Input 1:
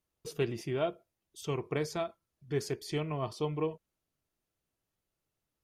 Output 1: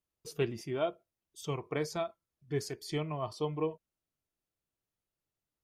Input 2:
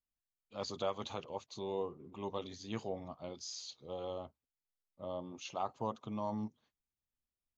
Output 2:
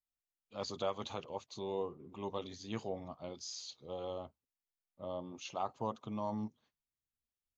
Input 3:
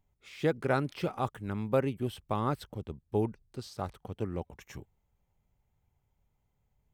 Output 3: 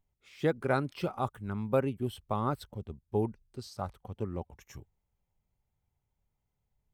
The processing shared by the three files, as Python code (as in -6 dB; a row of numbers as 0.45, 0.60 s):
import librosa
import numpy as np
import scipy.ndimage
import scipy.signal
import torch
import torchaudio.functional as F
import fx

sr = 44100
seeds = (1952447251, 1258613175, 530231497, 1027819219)

y = fx.noise_reduce_blind(x, sr, reduce_db=6)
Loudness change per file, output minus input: -1.0, 0.0, -0.5 LU